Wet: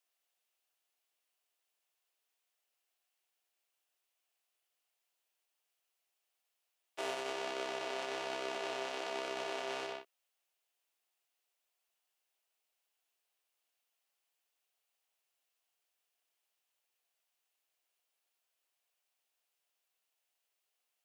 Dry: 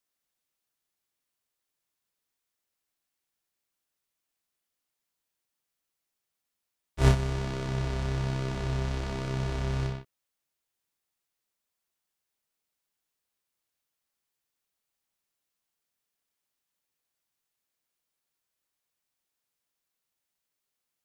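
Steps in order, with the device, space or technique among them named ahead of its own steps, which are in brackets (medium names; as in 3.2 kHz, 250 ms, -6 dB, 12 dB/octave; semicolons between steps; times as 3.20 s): laptop speaker (high-pass 370 Hz 24 dB/octave; peaking EQ 710 Hz +6 dB 0.36 oct; peaking EQ 2.8 kHz +6 dB 0.49 oct; peak limiter -25 dBFS, peak gain reduction 12.5 dB); trim -1 dB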